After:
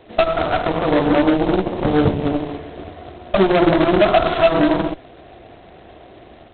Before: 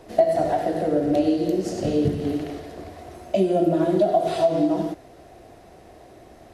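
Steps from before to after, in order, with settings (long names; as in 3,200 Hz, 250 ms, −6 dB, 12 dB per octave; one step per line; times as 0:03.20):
0:01.15–0:03.40: high-frequency loss of the air 310 metres
automatic gain control gain up to 5 dB
harmonic generator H 3 −22 dB, 4 −29 dB, 8 −18 dB, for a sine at −4 dBFS
level +2 dB
G.726 16 kbit/s 8,000 Hz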